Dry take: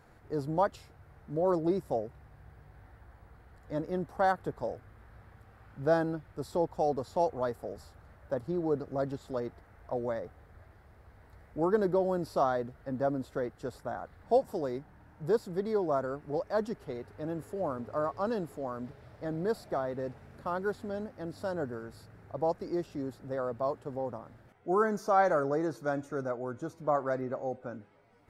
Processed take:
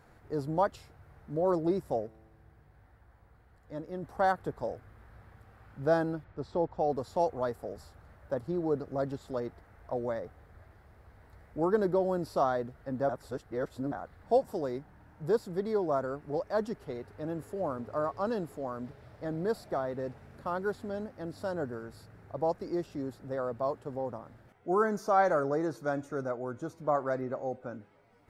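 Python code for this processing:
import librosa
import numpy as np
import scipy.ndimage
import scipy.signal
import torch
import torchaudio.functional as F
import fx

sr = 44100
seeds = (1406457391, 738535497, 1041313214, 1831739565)

y = fx.comb_fb(x, sr, f0_hz=110.0, decay_s=1.7, harmonics='all', damping=0.0, mix_pct=50, at=(2.06, 4.02), fade=0.02)
y = fx.air_absorb(y, sr, metres=160.0, at=(6.24, 6.9))
y = fx.edit(y, sr, fx.reverse_span(start_s=13.09, length_s=0.83), tone=tone)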